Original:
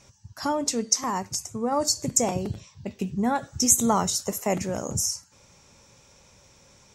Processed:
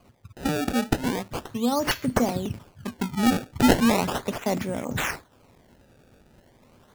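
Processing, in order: small resonant body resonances 250/3500 Hz, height 10 dB, ringing for 90 ms; decimation with a swept rate 24×, swing 160% 0.37 Hz; gain -1 dB

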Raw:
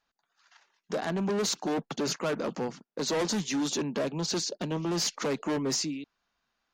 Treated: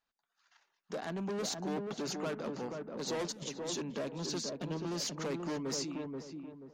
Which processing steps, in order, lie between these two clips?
3.32–3.73 negative-ratio compressor -36 dBFS, ratio -0.5; on a send: darkening echo 0.482 s, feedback 36%, low-pass 990 Hz, level -3 dB; on the sum: gain -8 dB

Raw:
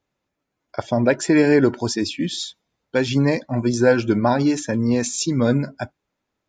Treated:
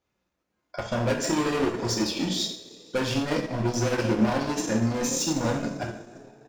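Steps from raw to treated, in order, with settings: in parallel at -2 dB: level quantiser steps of 10 dB; on the sum: resonator 62 Hz, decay 0.3 s, harmonics all, mix 60%; on a send: frequency-shifting echo 0.158 s, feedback 63%, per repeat +35 Hz, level -19 dB; on the sum: hard clip -22.5 dBFS, distortion -5 dB; two-slope reverb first 0.68 s, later 2.3 s, from -18 dB, DRR -1.5 dB; transient shaper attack +3 dB, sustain -6 dB; gain -3.5 dB

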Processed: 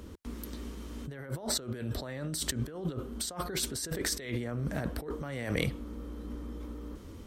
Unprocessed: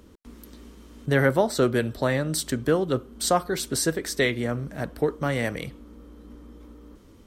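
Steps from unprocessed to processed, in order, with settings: bell 81 Hz +5.5 dB 0.75 oct; negative-ratio compressor -33 dBFS, ratio -1; gain -3 dB

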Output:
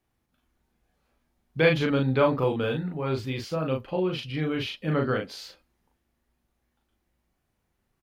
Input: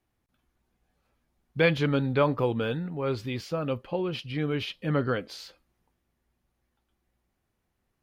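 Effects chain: doubler 38 ms -3 dB

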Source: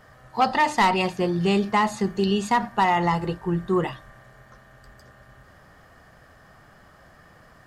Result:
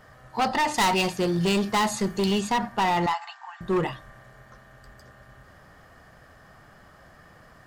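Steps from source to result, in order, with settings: 3.06–3.61 brick-wall FIR band-pass 670–7900 Hz; hard clip -19.5 dBFS, distortion -11 dB; 0.74–2.41 high shelf 4200 Hz +9 dB

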